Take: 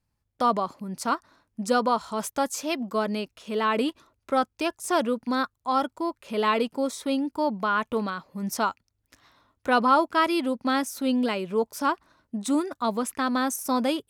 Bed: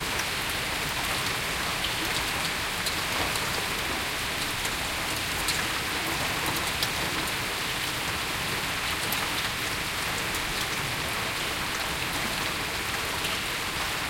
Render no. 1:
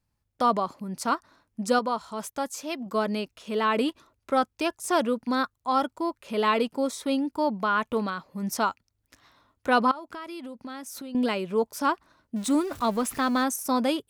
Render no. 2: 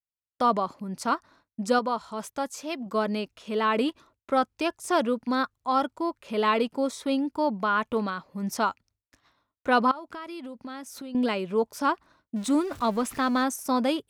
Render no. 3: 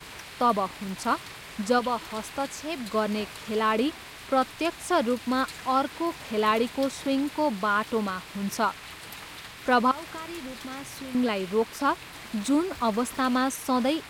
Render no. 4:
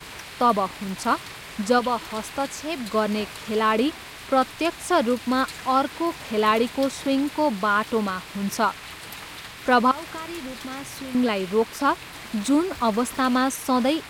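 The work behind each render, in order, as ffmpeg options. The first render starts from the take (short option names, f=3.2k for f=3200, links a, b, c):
-filter_complex "[0:a]asettb=1/sr,asplit=3[a][b][c];[a]atrim=end=9.914[d];[b]atrim=start=9.91:end=11.15,asetpts=PTS-STARTPTS,afade=t=in:d=0.004:c=qsin,afade=t=out:st=1.236:d=0.004:c=qsin,acompressor=threshold=-35dB:ratio=12:attack=3.2:release=140:knee=1:detection=peak[e];[c]atrim=start=11.146[f];[d][e]acrossfade=d=0.004:c1=hsin:c2=qsin[g];[g][f]acrossfade=d=0.004:c1=qsin:c2=hsin,asettb=1/sr,asplit=3[h][i][j];[h]atrim=end=12.364[k];[i]atrim=start=12.36:end=13.44,asetpts=PTS-STARTPTS,afade=t=in:d=0.004:c=qsin,afade=t=out:st=1.076:d=0.004:c=qsin,aeval=exprs='val(0)+0.5*0.0133*sgn(val(0))':c=same[l];[j]atrim=start=13.436[m];[k][l]acrossfade=d=0.004:c1=hsin:c2=qsin[n];[n][m]acrossfade=d=0.004:c1=qsin:c2=hsin,asplit=3[o][p][q];[o]atrim=end=1.792[r];[p]atrim=start=1.788:end=2.862,asetpts=PTS-STARTPTS,volume=-4.5dB[s];[q]atrim=start=2.858[t];[r][s]acrossfade=d=0.004:c1=hsin:c2=hsin[u];[u][t]acrossfade=d=0.004:c1=hsin:c2=hsin"
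-af "highshelf=f=8.8k:g=-7.5,agate=range=-33dB:threshold=-53dB:ratio=3:detection=peak"
-filter_complex "[1:a]volume=-13.5dB[a];[0:a][a]amix=inputs=2:normalize=0"
-af "volume=3.5dB"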